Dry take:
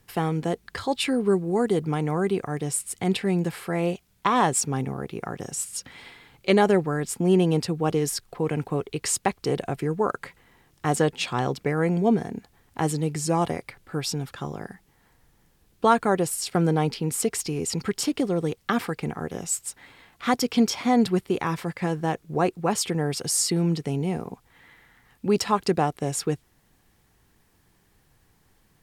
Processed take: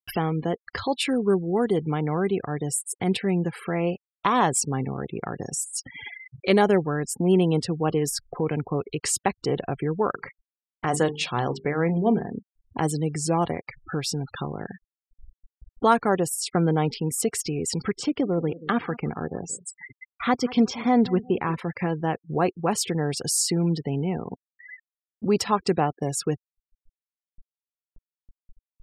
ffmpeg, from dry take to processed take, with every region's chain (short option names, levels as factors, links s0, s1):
-filter_complex "[0:a]asettb=1/sr,asplit=3[s0][s1][s2];[s0]atrim=end=10.114[s3];[s1]atrim=start=10.11:end=12.35,asetpts=PTS-STARTPTS,afade=t=in:d=0.004:c=qsin,afade=t=out:st=2.236:d=0.004:c=qsin,bandreject=f=50:t=h:w=6,bandreject=f=100:t=h:w=6,bandreject=f=150:t=h:w=6,bandreject=f=200:t=h:w=6,bandreject=f=250:t=h:w=6,bandreject=f=300:t=h:w=6,bandreject=f=350:t=h:w=6,bandreject=f=400:t=h:w=6,bandreject=f=450:t=h:w=6,aecho=1:1:41|42:0.106|0.112,atrim=end_sample=98784[s4];[s2]atrim=start=12.346[s5];[s3][s4]acrossfade=d=0.004:c1=hsin:c2=qsin[s6];[s6][s5]acrossfade=d=0.004:c1=qsin:c2=hsin,asettb=1/sr,asplit=3[s7][s8][s9];[s7]atrim=end=17.954[s10];[s8]atrim=start=17.95:end=21.59,asetpts=PTS-STARTPTS,afade=t=in:d=0.004:c=qsin,afade=t=out:st=3.636:d=0.004:c=qsin,aemphasis=mode=reproduction:type=50fm,aecho=1:1:182|364|546:0.126|0.0403|0.0129,atrim=end_sample=160524[s11];[s9]atrim=start=21.586[s12];[s10][s11]acrossfade=d=0.004:c1=hsin:c2=qsin[s13];[s13][s12]acrossfade=d=0.004:c1=qsin:c2=hsin,afftfilt=real='re*gte(hypot(re,im),0.0126)':imag='im*gte(hypot(re,im),0.0126)':win_size=1024:overlap=0.75,acompressor=mode=upward:threshold=0.0562:ratio=2.5"